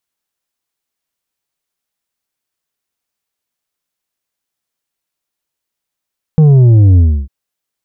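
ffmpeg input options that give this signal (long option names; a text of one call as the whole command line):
ffmpeg -f lavfi -i "aevalsrc='0.631*clip((0.9-t)/0.3,0,1)*tanh(2*sin(2*PI*160*0.9/log(65/160)*(exp(log(65/160)*t/0.9)-1)))/tanh(2)':duration=0.9:sample_rate=44100" out.wav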